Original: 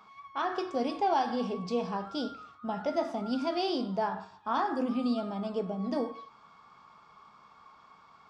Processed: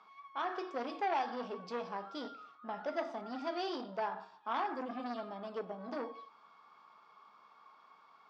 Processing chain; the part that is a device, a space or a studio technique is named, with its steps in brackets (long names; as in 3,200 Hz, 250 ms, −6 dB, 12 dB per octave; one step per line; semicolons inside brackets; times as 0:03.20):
public-address speaker with an overloaded transformer (saturating transformer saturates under 1,100 Hz; band-pass filter 310–5,200 Hz)
level −4.5 dB